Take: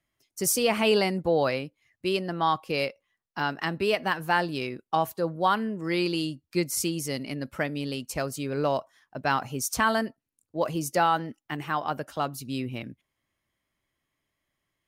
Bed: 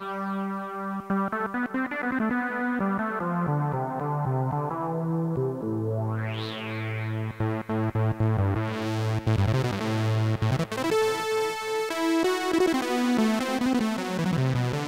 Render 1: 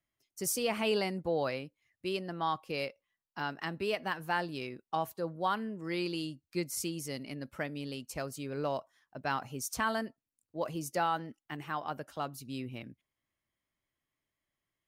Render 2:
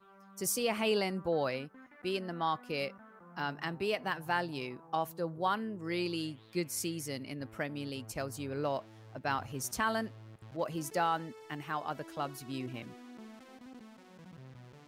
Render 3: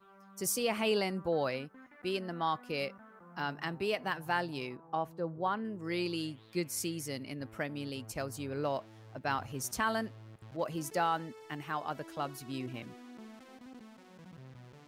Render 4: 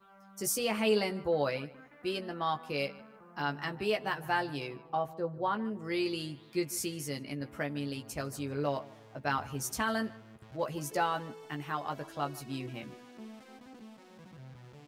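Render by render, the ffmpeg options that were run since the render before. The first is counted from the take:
-af "volume=-8dB"
-filter_complex "[1:a]volume=-27dB[a];[0:a][a]amix=inputs=2:normalize=0"
-filter_complex "[0:a]asettb=1/sr,asplit=3[a][b][c];[a]atrim=end=4.764[d];[b]atrim=start=4.76:end=5.65,asetpts=PTS-STARTPTS,afade=t=in:d=0.004:c=qsin,afade=t=out:st=0.886:d=0.004:c=qsin,lowpass=f=1.5k:p=1[e];[c]atrim=start=5.646[f];[d][e]acrossfade=d=0.004:c1=hsin:c2=qsin[g];[g][f]acrossfade=d=0.004:c1=qsin:c2=hsin"
-filter_complex "[0:a]asplit=2[a][b];[b]adelay=14,volume=-5dB[c];[a][c]amix=inputs=2:normalize=0,asplit=2[d][e];[e]adelay=152,lowpass=f=3.2k:p=1,volume=-19.5dB,asplit=2[f][g];[g]adelay=152,lowpass=f=3.2k:p=1,volume=0.33,asplit=2[h][i];[i]adelay=152,lowpass=f=3.2k:p=1,volume=0.33[j];[d][f][h][j]amix=inputs=4:normalize=0"

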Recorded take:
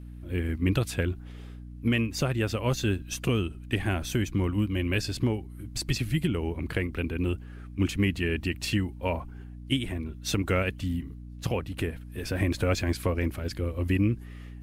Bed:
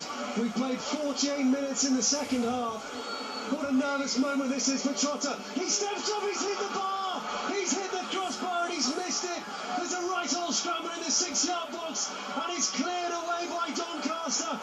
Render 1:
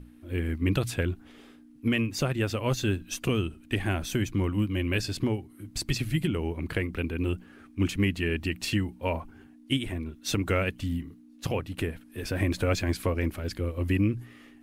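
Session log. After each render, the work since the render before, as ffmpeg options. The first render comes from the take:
-af "bandreject=f=60:t=h:w=6,bandreject=f=120:t=h:w=6,bandreject=f=180:t=h:w=6"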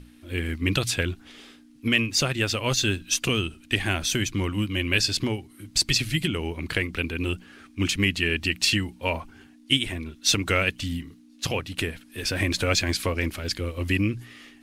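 -af "equalizer=f=4.8k:t=o:w=2.8:g=12.5"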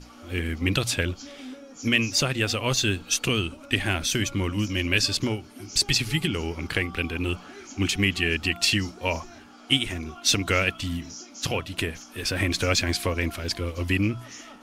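-filter_complex "[1:a]volume=-14.5dB[a];[0:a][a]amix=inputs=2:normalize=0"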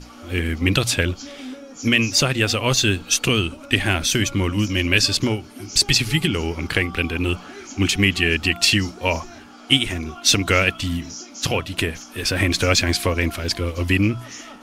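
-af "volume=5.5dB,alimiter=limit=-2dB:level=0:latency=1"

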